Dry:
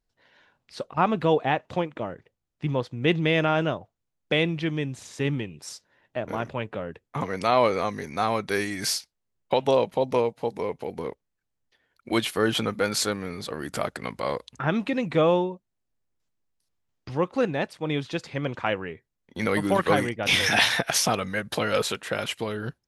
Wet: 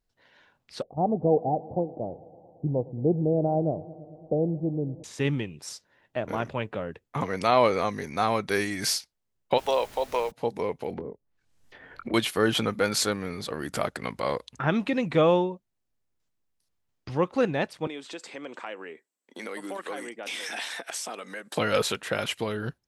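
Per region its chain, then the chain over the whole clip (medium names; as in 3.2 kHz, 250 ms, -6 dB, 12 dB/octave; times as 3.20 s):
0.82–5.04 s: Chebyshev low-pass 780 Hz, order 5 + modulated delay 112 ms, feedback 79%, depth 75 cents, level -21 dB
9.57–10.30 s: high-pass 600 Hz + added noise pink -48 dBFS
10.90–12.14 s: low-pass that closes with the level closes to 510 Hz, closed at -33.5 dBFS + doubling 22 ms -6 dB + three bands compressed up and down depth 100%
17.87–21.57 s: high-pass 260 Hz 24 dB/octave + peaking EQ 7.9 kHz +13.5 dB 0.26 oct + compression 2.5:1, threshold -38 dBFS
whole clip: none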